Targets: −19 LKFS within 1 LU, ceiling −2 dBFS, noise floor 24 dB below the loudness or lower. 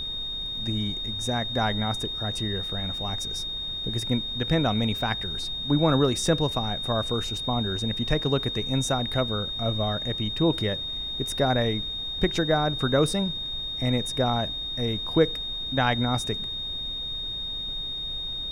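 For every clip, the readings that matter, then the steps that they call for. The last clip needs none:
interfering tone 3,700 Hz; level of the tone −30 dBFS; background noise floor −33 dBFS; target noise floor −50 dBFS; integrated loudness −26.0 LKFS; sample peak −7.0 dBFS; target loudness −19.0 LKFS
→ notch filter 3,700 Hz, Q 30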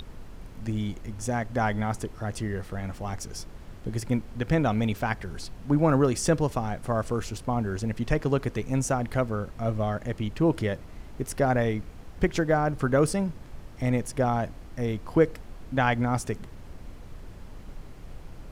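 interfering tone none found; background noise floor −45 dBFS; target noise floor −52 dBFS
→ noise reduction from a noise print 7 dB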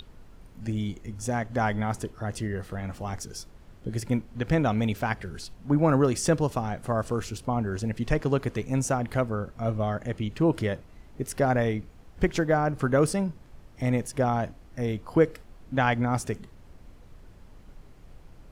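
background noise floor −51 dBFS; target noise floor −52 dBFS
→ noise reduction from a noise print 6 dB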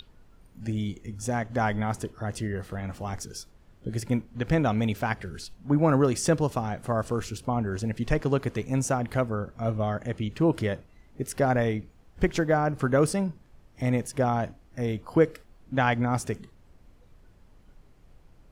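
background noise floor −57 dBFS; integrated loudness −28.0 LKFS; sample peak −7.5 dBFS; target loudness −19.0 LKFS
→ level +9 dB
brickwall limiter −2 dBFS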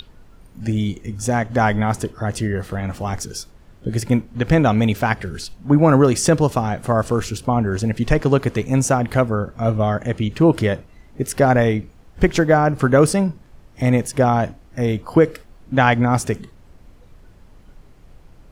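integrated loudness −19.0 LKFS; sample peak −2.0 dBFS; background noise floor −48 dBFS

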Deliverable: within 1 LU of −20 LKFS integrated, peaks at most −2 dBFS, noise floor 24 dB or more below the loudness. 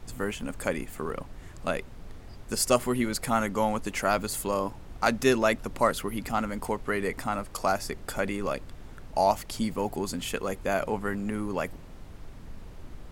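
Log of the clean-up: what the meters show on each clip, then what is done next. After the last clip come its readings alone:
background noise floor −46 dBFS; target noise floor −54 dBFS; integrated loudness −29.5 LKFS; sample peak −8.0 dBFS; target loudness −20.0 LKFS
→ noise reduction from a noise print 8 dB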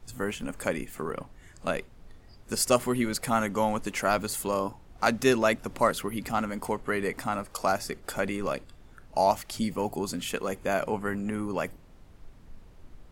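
background noise floor −53 dBFS; target noise floor −54 dBFS
→ noise reduction from a noise print 6 dB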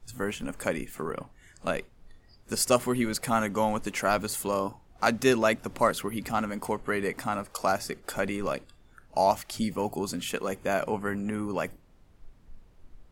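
background noise floor −58 dBFS; integrated loudness −29.5 LKFS; sample peak −8.0 dBFS; target loudness −20.0 LKFS
→ level +9.5 dB
brickwall limiter −2 dBFS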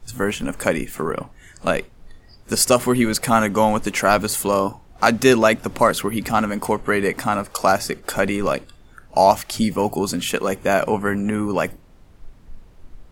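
integrated loudness −20.0 LKFS; sample peak −2.0 dBFS; background noise floor −48 dBFS

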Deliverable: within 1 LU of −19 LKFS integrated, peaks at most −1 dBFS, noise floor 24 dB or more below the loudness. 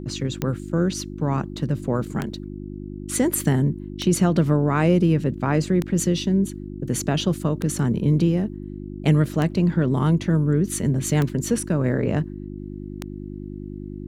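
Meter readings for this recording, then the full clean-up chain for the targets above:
number of clicks 8; mains hum 50 Hz; hum harmonics up to 350 Hz; level of the hum −32 dBFS; integrated loudness −22.5 LKFS; sample peak −6.0 dBFS; target loudness −19.0 LKFS
→ click removal
hum removal 50 Hz, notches 7
level +3.5 dB

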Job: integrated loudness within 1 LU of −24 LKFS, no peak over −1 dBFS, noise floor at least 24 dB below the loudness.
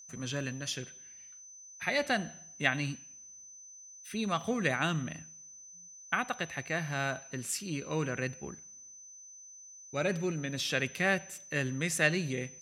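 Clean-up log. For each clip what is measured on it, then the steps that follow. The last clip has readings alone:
interfering tone 6,100 Hz; level of the tone −49 dBFS; integrated loudness −33.0 LKFS; sample peak −11.0 dBFS; target loudness −24.0 LKFS
→ notch filter 6,100 Hz, Q 30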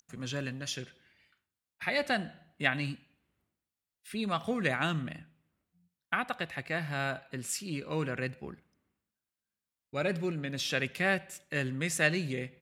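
interfering tone none found; integrated loudness −33.0 LKFS; sample peak −11.0 dBFS; target loudness −24.0 LKFS
→ level +9 dB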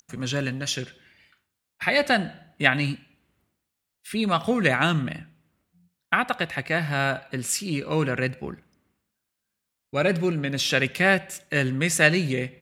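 integrated loudness −24.0 LKFS; sample peak −2.0 dBFS; background noise floor −82 dBFS

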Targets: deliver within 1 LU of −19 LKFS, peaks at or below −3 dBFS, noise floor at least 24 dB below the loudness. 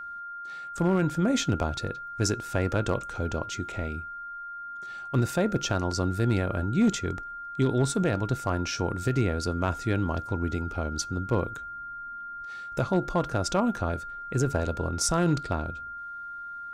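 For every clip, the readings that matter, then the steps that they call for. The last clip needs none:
share of clipped samples 0.3%; peaks flattened at −16.0 dBFS; interfering tone 1,400 Hz; level of the tone −36 dBFS; integrated loudness −29.0 LKFS; sample peak −16.0 dBFS; target loudness −19.0 LKFS
→ clipped peaks rebuilt −16 dBFS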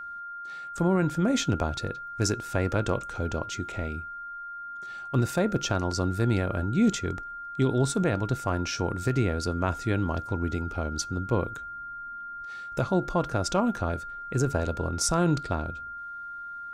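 share of clipped samples 0.0%; interfering tone 1,400 Hz; level of the tone −36 dBFS
→ notch filter 1,400 Hz, Q 30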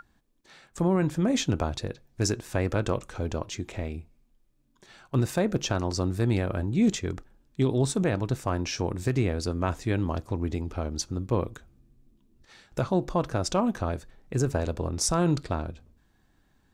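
interfering tone none found; integrated loudness −28.5 LKFS; sample peak −13.0 dBFS; target loudness −19.0 LKFS
→ level +9.5 dB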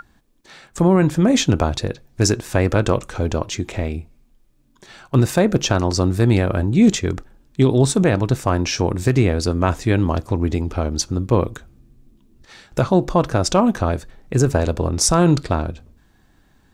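integrated loudness −19.0 LKFS; sample peak −3.5 dBFS; background noise floor −57 dBFS

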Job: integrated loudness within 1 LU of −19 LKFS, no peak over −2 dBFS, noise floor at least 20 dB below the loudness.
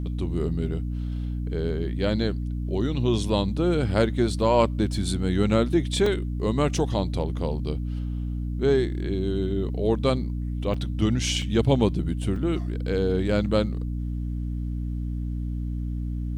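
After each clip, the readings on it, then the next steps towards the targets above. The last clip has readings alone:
number of dropouts 5; longest dropout 3.3 ms; mains hum 60 Hz; hum harmonics up to 300 Hz; level of the hum −26 dBFS; integrated loudness −26.0 LKFS; sample peak −7.0 dBFS; target loudness −19.0 LKFS
→ repair the gap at 0:06.06/0:09.69/0:10.74/0:11.42/0:12.36, 3.3 ms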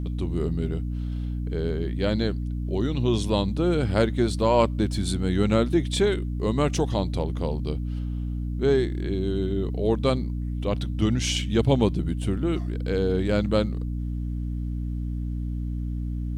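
number of dropouts 0; mains hum 60 Hz; hum harmonics up to 300 Hz; level of the hum −26 dBFS
→ mains-hum notches 60/120/180/240/300 Hz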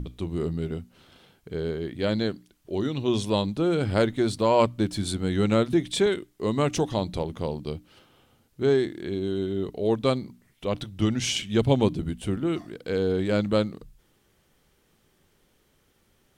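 mains hum none found; integrated loudness −26.5 LKFS; sample peak −7.5 dBFS; target loudness −19.0 LKFS
→ level +7.5 dB
brickwall limiter −2 dBFS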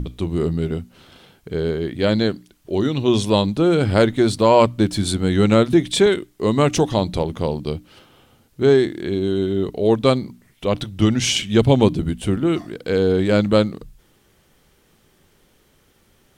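integrated loudness −19.0 LKFS; sample peak −2.0 dBFS; background noise floor −59 dBFS

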